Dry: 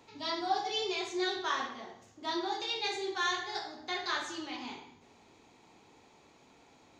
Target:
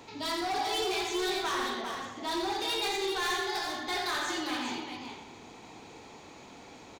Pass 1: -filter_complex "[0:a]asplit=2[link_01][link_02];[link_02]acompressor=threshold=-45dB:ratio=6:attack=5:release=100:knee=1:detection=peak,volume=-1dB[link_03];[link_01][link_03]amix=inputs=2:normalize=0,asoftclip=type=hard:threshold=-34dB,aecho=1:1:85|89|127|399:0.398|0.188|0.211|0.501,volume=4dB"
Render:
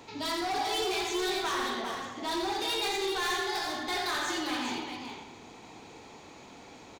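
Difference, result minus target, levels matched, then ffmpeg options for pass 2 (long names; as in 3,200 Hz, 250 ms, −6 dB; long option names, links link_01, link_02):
downward compressor: peak gain reduction −8.5 dB
-filter_complex "[0:a]asplit=2[link_01][link_02];[link_02]acompressor=threshold=-55dB:ratio=6:attack=5:release=100:knee=1:detection=peak,volume=-1dB[link_03];[link_01][link_03]amix=inputs=2:normalize=0,asoftclip=type=hard:threshold=-34dB,aecho=1:1:85|89|127|399:0.398|0.188|0.211|0.501,volume=4dB"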